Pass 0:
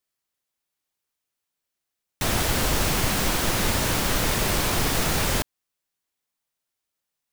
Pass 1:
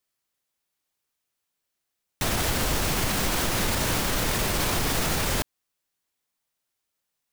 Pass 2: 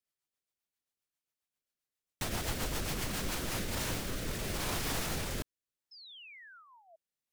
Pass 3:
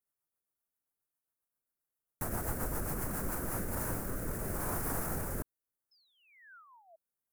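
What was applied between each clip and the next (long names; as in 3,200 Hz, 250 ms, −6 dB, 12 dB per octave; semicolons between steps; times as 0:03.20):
brickwall limiter −17.5 dBFS, peak gain reduction 7.5 dB; level +2 dB
sound drawn into the spectrogram fall, 0:05.91–0:06.96, 630–5,300 Hz −43 dBFS; rotating-speaker cabinet horn 7.5 Hz, later 0.75 Hz, at 0:03.07; level −8 dB
drawn EQ curve 1,500 Hz 0 dB, 3,400 Hz −24 dB, 11,000 Hz +4 dB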